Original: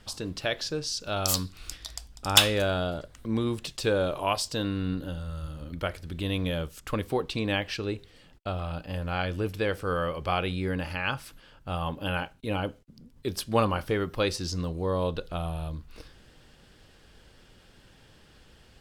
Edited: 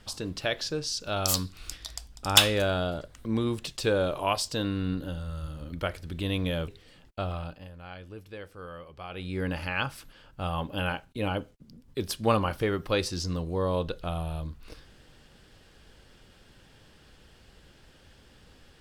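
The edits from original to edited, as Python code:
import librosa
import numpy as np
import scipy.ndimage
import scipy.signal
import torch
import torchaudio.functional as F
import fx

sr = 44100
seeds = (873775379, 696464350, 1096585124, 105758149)

y = fx.edit(x, sr, fx.cut(start_s=6.68, length_s=1.28),
    fx.fade_down_up(start_s=8.59, length_s=2.16, db=-14.0, fade_s=0.38), tone=tone)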